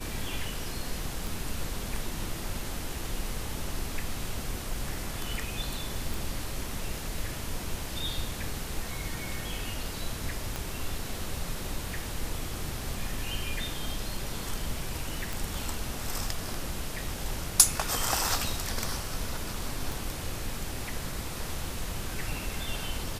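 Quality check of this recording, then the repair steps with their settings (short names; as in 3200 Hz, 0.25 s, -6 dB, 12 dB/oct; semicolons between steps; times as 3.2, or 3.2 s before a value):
1.27 pop
6.14 pop
10.56 pop -18 dBFS
15.33 pop
19.92 pop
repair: de-click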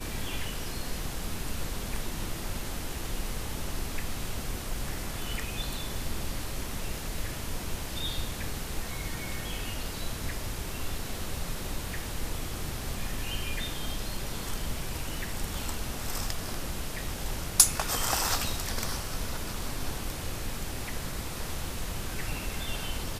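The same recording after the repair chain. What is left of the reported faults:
10.56 pop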